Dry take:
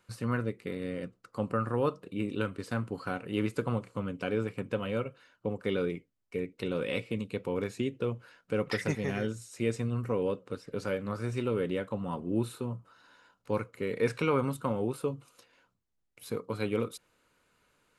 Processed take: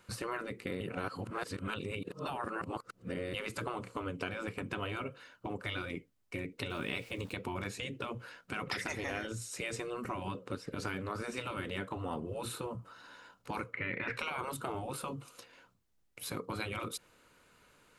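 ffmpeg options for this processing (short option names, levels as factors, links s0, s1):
-filter_complex "[0:a]asettb=1/sr,asplit=3[s0][s1][s2];[s0]atrim=end=6.704[s3];[s1]atrim=start=6.7:end=7.33,asetpts=PTS-STARTPTS,afade=t=in:d=0.004:c=qsin,afade=t=out:st=0.626:d=0.004:c=qsin,aeval=exprs='val(0)*gte(abs(val(0)),0.002)':c=same[s4];[s2]atrim=start=7.326[s5];[s3][s4]acrossfade=d=0.004:c1=hsin:c2=qsin[s6];[s6][s5]acrossfade=d=0.004:c1=qsin:c2=hsin,asettb=1/sr,asplit=3[s7][s8][s9];[s7]atrim=end=13.734[s10];[s8]atrim=start=13.73:end=14.17,asetpts=PTS-STARTPTS,afade=t=in:d=0.004:c=qsin,afade=t=out:st=0.436:d=0.004:c=qsin,lowpass=f=2100:t=q:w=5[s11];[s9]atrim=start=14.166[s12];[s10][s11]acrossfade=d=0.004:c1=hsin:c2=qsin[s13];[s13][s12]acrossfade=d=0.004:c1=qsin:c2=hsin,asplit=3[s14][s15][s16];[s14]atrim=end=0.812[s17];[s15]atrim=start=0.808:end=3.342,asetpts=PTS-STARTPTS,areverse[s18];[s16]atrim=start=3.338[s19];[s17][s18]acrossfade=d=0.004:c1=hsin:c2=hsin[s20];[s20][s19]acrossfade=d=0.004:c1=hsin:c2=hsin,afftfilt=real='re*lt(hypot(re,im),0.1)':imag='im*lt(hypot(re,im),0.1)':win_size=1024:overlap=0.75,acompressor=threshold=0.00794:ratio=2.5,volume=2"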